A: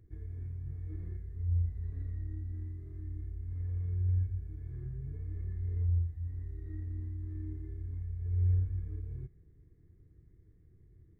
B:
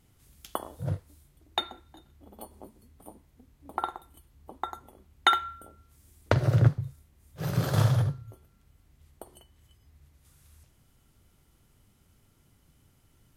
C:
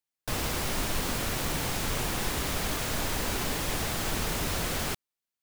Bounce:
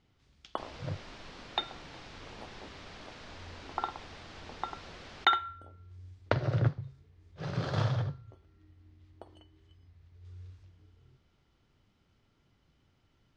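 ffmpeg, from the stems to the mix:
-filter_complex "[0:a]highpass=77,adelay=1900,volume=-14dB[a];[1:a]volume=-3dB[b];[2:a]adelay=300,volume=-15.5dB[c];[a][b][c]amix=inputs=3:normalize=0,lowpass=f=5.1k:w=0.5412,lowpass=f=5.1k:w=1.3066,lowshelf=f=210:g=-5.5"

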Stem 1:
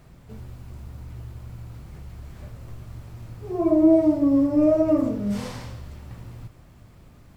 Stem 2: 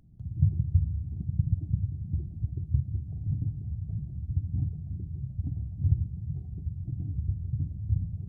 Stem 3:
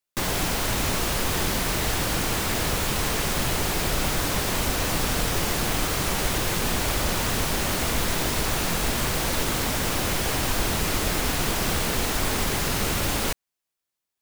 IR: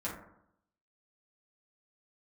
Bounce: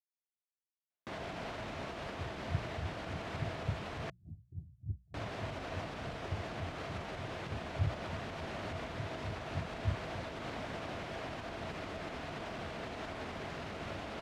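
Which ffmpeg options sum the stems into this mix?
-filter_complex "[1:a]aeval=exprs='val(0)*pow(10,-35*(0.5-0.5*cos(2*PI*3.4*n/s))/20)':c=same,adelay=1950,volume=-4dB[a];[2:a]adelay=900,volume=-8dB,asplit=3[b][c][d];[b]atrim=end=4.1,asetpts=PTS-STARTPTS,afade=t=out:st=4.096:d=0.004:c=hsin[e];[c]atrim=start=4.1:end=5.14,asetpts=PTS-STARTPTS,volume=0[f];[d]atrim=start=5.14,asetpts=PTS-STARTPTS,afade=t=in:d=0.004:c=hsin[g];[e][f][g]concat=n=3:v=0:a=1,lowpass=2.9k,alimiter=level_in=8.5dB:limit=-24dB:level=0:latency=1:release=200,volume=-8.5dB,volume=0dB[h];[a][h]amix=inputs=2:normalize=0,highpass=69,equalizer=f=660:w=6.9:g=9,bandreject=f=60:t=h:w=6,bandreject=f=120:t=h:w=6,bandreject=f=180:t=h:w=6"

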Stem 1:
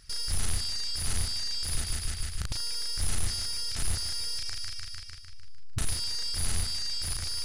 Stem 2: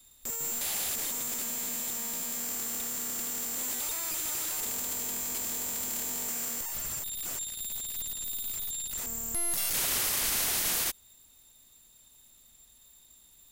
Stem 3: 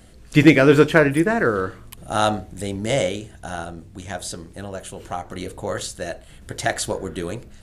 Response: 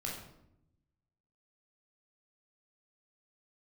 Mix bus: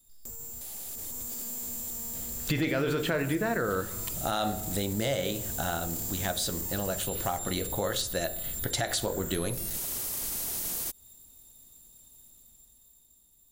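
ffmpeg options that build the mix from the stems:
-filter_complex "[0:a]afwtdn=0.0251,asoftclip=type=tanh:threshold=-31dB,volume=-14.5dB[a];[1:a]equalizer=f=2.1k:w=0.43:g=-12,acompressor=threshold=-36dB:ratio=6,volume=-2.5dB[b];[2:a]equalizer=f=3.9k:w=3.4:g=7.5,adelay=2150,volume=-6.5dB,asplit=2[c][d];[d]volume=-8.5dB[e];[b][c]amix=inputs=2:normalize=0,dynaudnorm=f=260:g=9:m=9dB,alimiter=limit=-12.5dB:level=0:latency=1,volume=0dB[f];[3:a]atrim=start_sample=2205[g];[e][g]afir=irnorm=-1:irlink=0[h];[a][f][h]amix=inputs=3:normalize=0,acompressor=threshold=-28dB:ratio=3"

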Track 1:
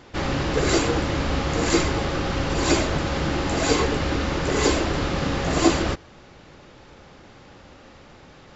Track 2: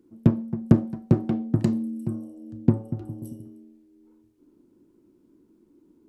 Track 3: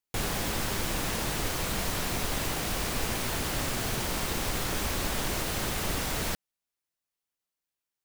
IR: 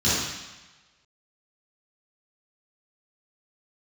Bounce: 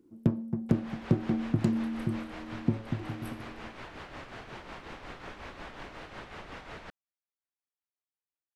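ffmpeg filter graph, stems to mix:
-filter_complex "[1:a]volume=-2.5dB[a];[2:a]lowpass=2.3k,lowshelf=f=360:g=-8.5,tremolo=f=5.5:d=0.55,adelay=550,volume=-6dB[b];[a][b]amix=inputs=2:normalize=0,alimiter=limit=-12.5dB:level=0:latency=1:release=297"

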